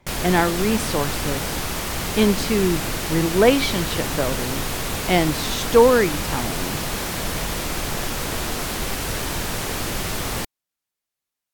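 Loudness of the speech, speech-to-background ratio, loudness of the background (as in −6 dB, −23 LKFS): −21.5 LKFS, 4.0 dB, −25.5 LKFS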